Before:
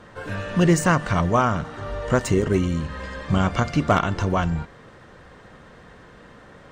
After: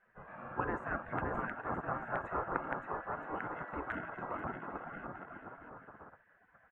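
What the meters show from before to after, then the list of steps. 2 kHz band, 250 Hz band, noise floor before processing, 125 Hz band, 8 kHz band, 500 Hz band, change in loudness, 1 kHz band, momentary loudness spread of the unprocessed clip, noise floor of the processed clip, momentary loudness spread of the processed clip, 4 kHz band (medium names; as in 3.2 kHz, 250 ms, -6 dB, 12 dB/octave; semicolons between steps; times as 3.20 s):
-11.5 dB, -21.5 dB, -48 dBFS, -25.0 dB, under -40 dB, -17.0 dB, -17.5 dB, -12.5 dB, 13 LU, -69 dBFS, 15 LU, under -30 dB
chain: bouncing-ball echo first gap 570 ms, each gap 0.7×, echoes 5; integer overflow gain 7 dB; elliptic band-pass 100–1400 Hz, stop band 50 dB; bass shelf 310 Hz -10.5 dB; frequency shift -160 Hz; spectral gate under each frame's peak -15 dB weak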